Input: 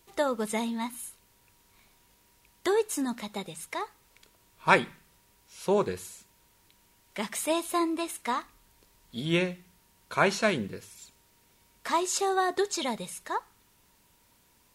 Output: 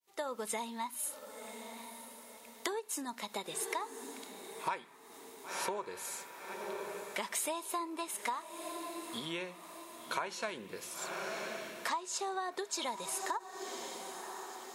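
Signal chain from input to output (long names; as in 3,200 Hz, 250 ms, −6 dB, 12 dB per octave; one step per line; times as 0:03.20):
fade in at the beginning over 0.63 s
on a send: feedback delay with all-pass diffusion 1,031 ms, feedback 43%, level −16 dB
on the sum: dynamic equaliser 970 Hz, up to +8 dB, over −48 dBFS, Q 5.3
downward compressor 16 to 1, threshold −37 dBFS, peak gain reduction 25.5 dB
high-pass filter 190 Hz 6 dB per octave
bass and treble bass −10 dB, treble +2 dB
0:11.89–0:12.52: low-pass filter 9,200 Hz 12 dB per octave
every ending faded ahead of time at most 490 dB per second
level +4 dB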